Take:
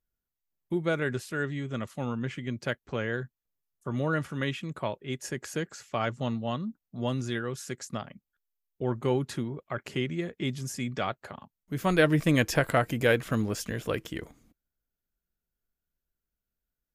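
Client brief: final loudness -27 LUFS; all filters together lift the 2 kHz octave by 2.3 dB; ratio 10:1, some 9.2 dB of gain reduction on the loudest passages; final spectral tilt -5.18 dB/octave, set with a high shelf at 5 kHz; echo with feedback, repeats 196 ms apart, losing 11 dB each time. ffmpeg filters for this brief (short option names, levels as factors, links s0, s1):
-af "equalizer=f=2000:t=o:g=4,highshelf=f=5000:g=-6.5,acompressor=threshold=0.0501:ratio=10,aecho=1:1:196|392|588:0.282|0.0789|0.0221,volume=2.24"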